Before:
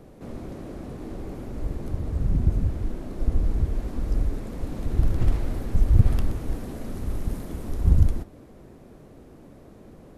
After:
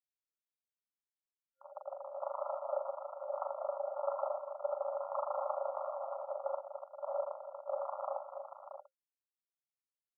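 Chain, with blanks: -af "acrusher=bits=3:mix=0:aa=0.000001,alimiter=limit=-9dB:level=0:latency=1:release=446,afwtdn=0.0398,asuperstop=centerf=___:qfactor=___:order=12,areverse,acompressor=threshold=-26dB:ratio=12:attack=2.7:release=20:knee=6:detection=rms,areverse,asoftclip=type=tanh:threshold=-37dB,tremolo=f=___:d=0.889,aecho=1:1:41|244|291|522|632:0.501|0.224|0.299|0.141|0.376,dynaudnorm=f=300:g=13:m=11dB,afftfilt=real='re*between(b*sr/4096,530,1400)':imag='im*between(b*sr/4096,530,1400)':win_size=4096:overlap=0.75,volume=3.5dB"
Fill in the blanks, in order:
680, 3.6, 26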